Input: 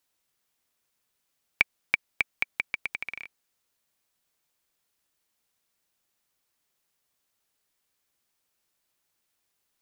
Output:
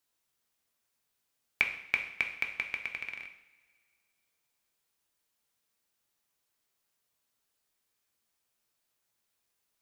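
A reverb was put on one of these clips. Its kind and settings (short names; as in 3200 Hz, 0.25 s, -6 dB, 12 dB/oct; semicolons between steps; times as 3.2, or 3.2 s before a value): two-slope reverb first 0.68 s, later 2.4 s, from -21 dB, DRR 3 dB; gain -4.5 dB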